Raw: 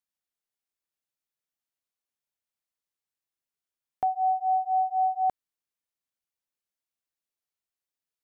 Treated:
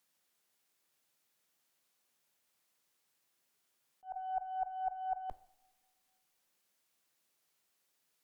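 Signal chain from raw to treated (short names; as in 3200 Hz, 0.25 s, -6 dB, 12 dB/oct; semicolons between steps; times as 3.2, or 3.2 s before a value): HPF 130 Hz; added harmonics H 4 -27 dB, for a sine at -18 dBFS; negative-ratio compressor -37 dBFS, ratio -1; auto swell 0.184 s; two-slope reverb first 0.67 s, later 2.1 s, from -18 dB, DRR 15 dB; gain +2.5 dB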